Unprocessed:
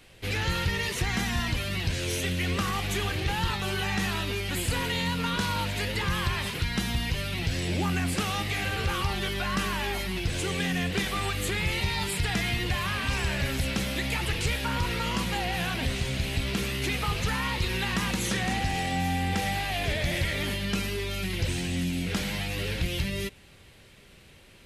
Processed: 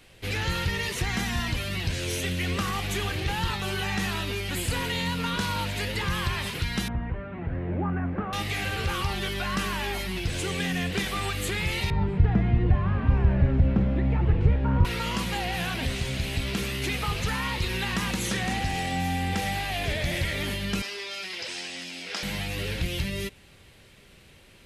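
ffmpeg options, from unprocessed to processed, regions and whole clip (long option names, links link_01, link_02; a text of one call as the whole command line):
ffmpeg -i in.wav -filter_complex "[0:a]asettb=1/sr,asplit=3[link_01][link_02][link_03];[link_01]atrim=end=6.884[link_04];[link_02]atrim=start=6.88:end=8.33,asetpts=PTS-STARTPTS,afade=type=in:duration=0.004:curve=qsin,afade=type=out:start_time=1.446:duration=0.004:curve=qsin,lowpass=frequency=1500:width=0.5412,lowpass=frequency=1500:width=1.3066,bandreject=frequency=50:width_type=h:width=6,bandreject=frequency=100:width_type=h:width=6,bandreject=frequency=150:width_type=h:width=6,aeval=exprs='val(0)+0.00141*sin(2*PI*600*n/s)':channel_layout=same[link_05];[link_03]atrim=start=8.326[link_06];[link_04][link_05]acrossfade=duration=0.004:curve1=hsin:curve2=qsin[link_07];[link_07][link_06]acrossfade=duration=0.004:curve1=qsin:curve2=hsin,asettb=1/sr,asplit=3[link_08][link_09][link_10];[link_08]atrim=end=11.904[link_11];[link_09]atrim=start=11.9:end=14.85,asetpts=PTS-STARTPTS,afade=type=in:duration=0.004:curve=qsin,afade=type=out:start_time=2.946:duration=0.004:curve=qsin,lowpass=1100,lowshelf=frequency=320:gain=10.5[link_12];[link_10]atrim=start=14.846[link_13];[link_11][link_12]acrossfade=duration=0.004:curve1=hsin:curve2=qsin[link_14];[link_14][link_13]acrossfade=duration=0.004:curve1=qsin:curve2=hsin,asettb=1/sr,asplit=3[link_15][link_16][link_17];[link_15]atrim=end=20.824[link_18];[link_16]atrim=start=20.82:end=22.23,asetpts=PTS-STARTPTS,afade=type=in:duration=0.004:curve=qsin,afade=type=out:start_time=1.406:duration=0.004:curve=qsin,highpass=570,lowpass=7400,equalizer=frequency=5100:width_type=o:width=0.24:gain=8.5[link_19];[link_17]atrim=start=22.226[link_20];[link_18][link_19]acrossfade=duration=0.004:curve1=hsin:curve2=qsin[link_21];[link_21][link_20]acrossfade=duration=0.004:curve1=qsin:curve2=hsin" out.wav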